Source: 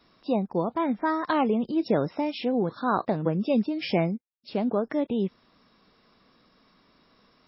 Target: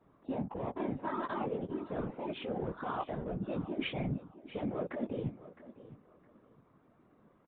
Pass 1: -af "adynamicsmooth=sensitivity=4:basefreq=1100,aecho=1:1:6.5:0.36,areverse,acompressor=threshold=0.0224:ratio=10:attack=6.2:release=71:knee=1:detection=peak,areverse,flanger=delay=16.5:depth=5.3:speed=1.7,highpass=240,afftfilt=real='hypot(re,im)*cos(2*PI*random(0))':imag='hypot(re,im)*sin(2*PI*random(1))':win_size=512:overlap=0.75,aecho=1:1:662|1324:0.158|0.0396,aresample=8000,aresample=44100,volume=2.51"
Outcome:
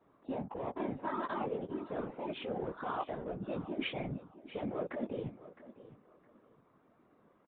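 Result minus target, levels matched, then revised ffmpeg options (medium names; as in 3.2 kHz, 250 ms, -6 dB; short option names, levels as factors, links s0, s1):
125 Hz band -3.5 dB
-af "adynamicsmooth=sensitivity=4:basefreq=1100,aecho=1:1:6.5:0.36,areverse,acompressor=threshold=0.0224:ratio=10:attack=6.2:release=71:knee=1:detection=peak,areverse,flanger=delay=16.5:depth=5.3:speed=1.7,highpass=91,afftfilt=real='hypot(re,im)*cos(2*PI*random(0))':imag='hypot(re,im)*sin(2*PI*random(1))':win_size=512:overlap=0.75,aecho=1:1:662|1324:0.158|0.0396,aresample=8000,aresample=44100,volume=2.51"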